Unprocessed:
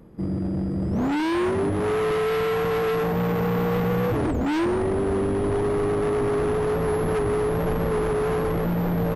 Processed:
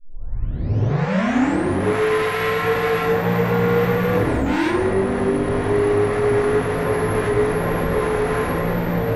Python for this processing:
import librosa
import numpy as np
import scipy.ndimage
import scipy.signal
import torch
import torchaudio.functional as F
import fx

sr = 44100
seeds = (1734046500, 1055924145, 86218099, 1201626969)

y = fx.tape_start_head(x, sr, length_s=1.8)
y = fx.rev_gated(y, sr, seeds[0], gate_ms=130, shape='rising', drr_db=-5.5)
y = fx.dynamic_eq(y, sr, hz=2100.0, q=1.6, threshold_db=-40.0, ratio=4.0, max_db=5)
y = F.gain(torch.from_numpy(y), -2.0).numpy()